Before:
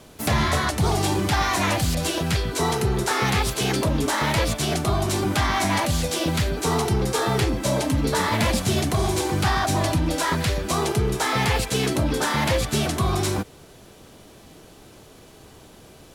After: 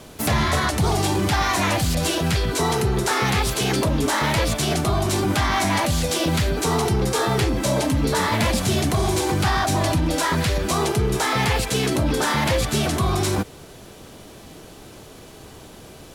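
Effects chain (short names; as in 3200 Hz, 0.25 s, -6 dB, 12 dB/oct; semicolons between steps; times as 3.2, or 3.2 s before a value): limiter -18 dBFS, peak gain reduction 4.5 dB; gain +5 dB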